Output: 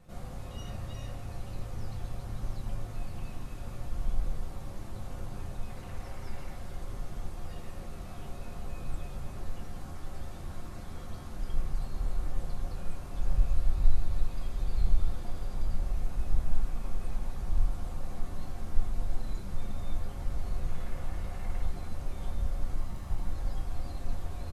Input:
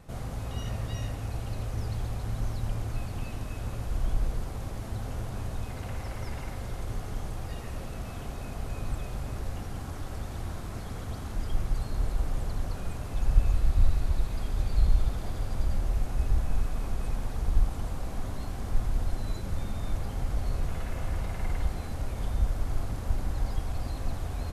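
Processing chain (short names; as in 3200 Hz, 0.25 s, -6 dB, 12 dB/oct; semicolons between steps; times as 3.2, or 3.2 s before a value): 22.76–23.26 minimum comb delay 1 ms; doubler 27 ms -14 dB; on a send: reverb RT60 0.15 s, pre-delay 6 ms, DRR 1 dB; on the sum: gain -8.5 dB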